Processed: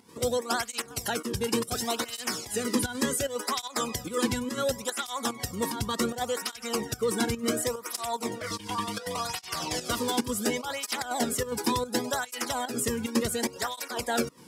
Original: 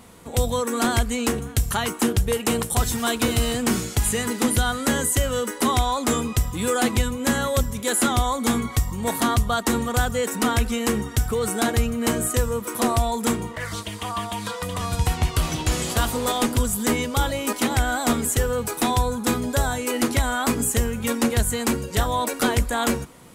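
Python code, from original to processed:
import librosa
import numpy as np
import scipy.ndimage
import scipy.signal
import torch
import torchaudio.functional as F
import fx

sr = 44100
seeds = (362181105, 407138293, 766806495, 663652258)

p1 = scipy.signal.sosfilt(scipy.signal.butter(2, 75.0, 'highpass', fs=sr, output='sos'), x)
p2 = fx.peak_eq(p1, sr, hz=5200.0, db=10.0, octaves=0.33)
p3 = fx.rider(p2, sr, range_db=4, speed_s=0.5)
p4 = p2 + F.gain(torch.from_numpy(p3), 0.0).numpy()
p5 = fx.stretch_vocoder(p4, sr, factor=0.62)
p6 = fx.volume_shaper(p5, sr, bpm=147, per_beat=1, depth_db=-11, release_ms=86.0, shape='slow start')
p7 = fx.flanger_cancel(p6, sr, hz=0.69, depth_ms=1.7)
y = F.gain(torch.from_numpy(p7), -7.5).numpy()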